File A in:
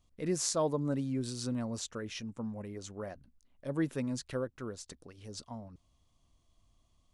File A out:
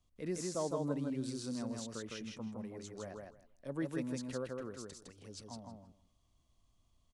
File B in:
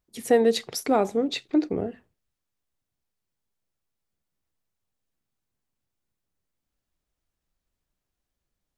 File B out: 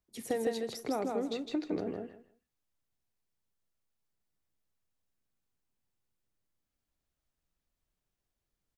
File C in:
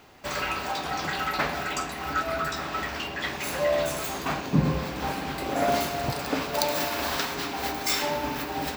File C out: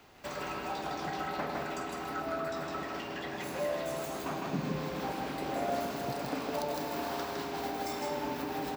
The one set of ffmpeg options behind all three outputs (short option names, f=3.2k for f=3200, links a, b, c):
-filter_complex "[0:a]acrossover=split=130|990[a][b][c];[a]acompressor=threshold=-55dB:ratio=4[d];[b]acompressor=threshold=-27dB:ratio=4[e];[c]acompressor=threshold=-40dB:ratio=4[f];[d][e][f]amix=inputs=3:normalize=0,aecho=1:1:159|318|477:0.708|0.127|0.0229,volume=-5dB"